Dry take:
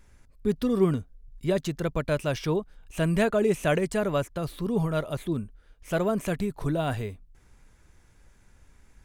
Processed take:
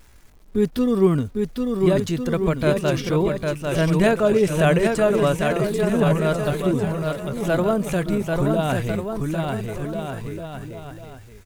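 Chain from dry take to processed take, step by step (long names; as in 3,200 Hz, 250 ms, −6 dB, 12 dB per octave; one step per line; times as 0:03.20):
bouncing-ball delay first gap 630 ms, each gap 0.75×, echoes 5
bit reduction 10 bits
tempo change 0.79×
level +5 dB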